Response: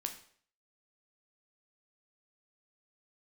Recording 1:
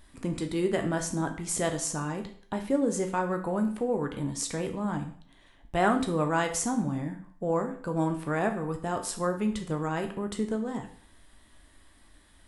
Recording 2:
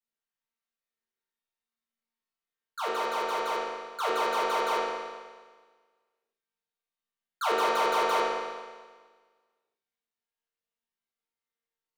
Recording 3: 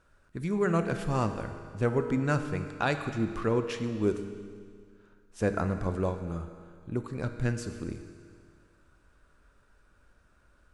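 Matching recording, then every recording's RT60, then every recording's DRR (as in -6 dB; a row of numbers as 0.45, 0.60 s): 1; 0.55, 1.5, 2.1 s; 4.5, -9.5, 7.0 dB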